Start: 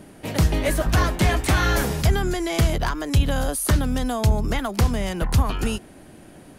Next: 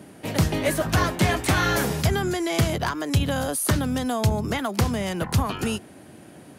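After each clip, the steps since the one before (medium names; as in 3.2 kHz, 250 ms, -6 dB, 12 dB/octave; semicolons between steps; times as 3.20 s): high-pass 84 Hz 24 dB/octave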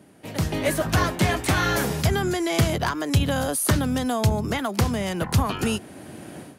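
level rider gain up to 16 dB; trim -7.5 dB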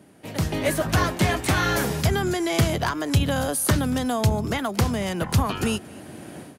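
delay 233 ms -23.5 dB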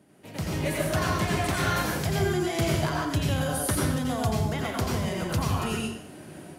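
plate-style reverb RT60 0.67 s, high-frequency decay 0.9×, pre-delay 75 ms, DRR -2.5 dB; trim -8 dB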